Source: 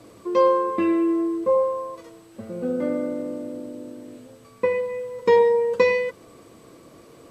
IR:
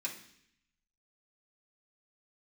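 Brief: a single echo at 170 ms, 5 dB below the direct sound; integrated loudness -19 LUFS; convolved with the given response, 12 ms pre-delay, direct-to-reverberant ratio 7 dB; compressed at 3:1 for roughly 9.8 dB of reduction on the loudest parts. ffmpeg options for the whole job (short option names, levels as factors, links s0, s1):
-filter_complex "[0:a]acompressor=threshold=0.0501:ratio=3,aecho=1:1:170:0.562,asplit=2[s0][s1];[1:a]atrim=start_sample=2205,adelay=12[s2];[s1][s2]afir=irnorm=-1:irlink=0,volume=0.376[s3];[s0][s3]amix=inputs=2:normalize=0,volume=2.66"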